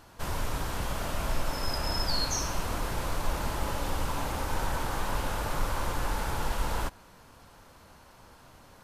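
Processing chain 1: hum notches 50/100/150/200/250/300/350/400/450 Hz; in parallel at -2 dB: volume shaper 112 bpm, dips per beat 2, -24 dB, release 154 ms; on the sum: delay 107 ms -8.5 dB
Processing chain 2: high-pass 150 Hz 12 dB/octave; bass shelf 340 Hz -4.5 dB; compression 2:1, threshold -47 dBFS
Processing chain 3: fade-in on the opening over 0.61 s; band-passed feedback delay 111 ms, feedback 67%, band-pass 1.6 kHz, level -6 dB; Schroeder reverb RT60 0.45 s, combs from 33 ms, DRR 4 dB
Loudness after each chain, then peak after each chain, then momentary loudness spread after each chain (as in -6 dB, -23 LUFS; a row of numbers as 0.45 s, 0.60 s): -28.0 LUFS, -42.5 LUFS, -31.0 LUFS; -10.5 dBFS, -30.0 dBFS, -13.5 dBFS; 5 LU, 15 LU, 8 LU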